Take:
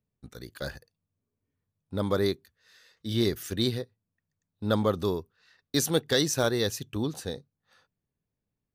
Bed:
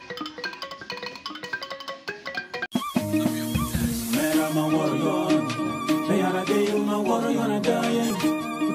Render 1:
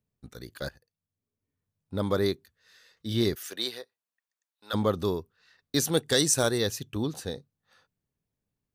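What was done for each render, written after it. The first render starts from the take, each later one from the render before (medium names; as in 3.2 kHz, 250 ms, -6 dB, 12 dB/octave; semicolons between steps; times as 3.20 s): 0.69–1.96 s: fade in, from -15 dB; 3.34–4.73 s: high-pass 480 Hz -> 1.2 kHz; 5.97–6.58 s: peaking EQ 8.6 kHz +12 dB 0.74 oct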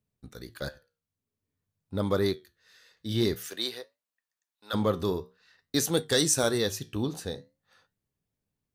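in parallel at -12 dB: sine folder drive 4 dB, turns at -9 dBFS; on the sum: flange 0.5 Hz, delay 9.2 ms, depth 7 ms, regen -73%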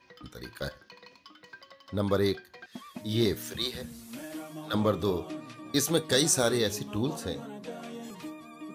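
add bed -18 dB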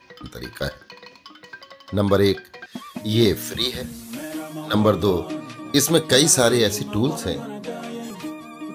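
trim +9 dB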